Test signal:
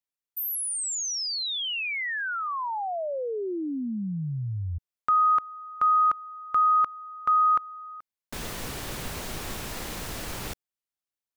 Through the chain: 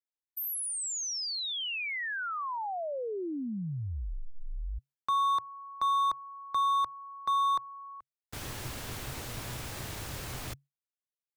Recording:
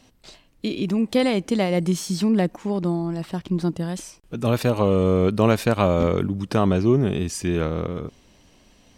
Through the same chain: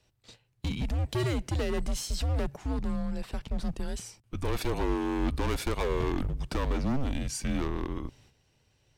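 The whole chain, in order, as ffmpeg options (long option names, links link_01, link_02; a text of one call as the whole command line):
ffmpeg -i in.wav -af "asoftclip=type=hard:threshold=-20.5dB,afreqshift=-140,agate=range=-9dB:threshold=-43dB:ratio=16:release=434:detection=peak,volume=-4.5dB" out.wav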